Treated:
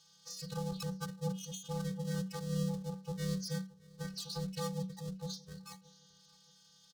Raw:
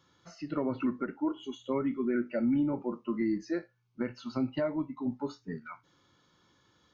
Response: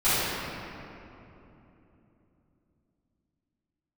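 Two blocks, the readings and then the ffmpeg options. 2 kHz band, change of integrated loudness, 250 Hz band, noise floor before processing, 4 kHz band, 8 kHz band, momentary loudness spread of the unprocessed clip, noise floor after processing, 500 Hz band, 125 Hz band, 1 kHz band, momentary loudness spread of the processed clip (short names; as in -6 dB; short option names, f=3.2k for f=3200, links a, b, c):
-8.0 dB, -6.5 dB, -9.5 dB, -69 dBFS, +7.0 dB, n/a, 12 LU, -65 dBFS, -8.5 dB, +6.0 dB, -6.0 dB, 10 LU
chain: -af "lowpass=5.8k,highshelf=f=3.9k:g=-4.5,aecho=1:1:621|1242:0.0631|0.0227,afftfilt=real='hypot(re,im)*cos(PI*b)':imag='0':win_size=512:overlap=0.75,aeval=exprs='max(val(0),0)':c=same,aexciter=amount=15.2:drive=4.4:freq=3.8k,afreqshift=-190,volume=-1.5dB"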